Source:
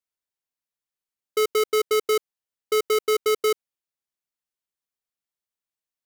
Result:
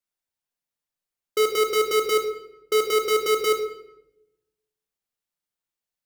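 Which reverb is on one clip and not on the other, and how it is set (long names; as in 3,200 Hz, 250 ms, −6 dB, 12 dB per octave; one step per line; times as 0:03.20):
rectangular room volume 310 cubic metres, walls mixed, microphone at 0.86 metres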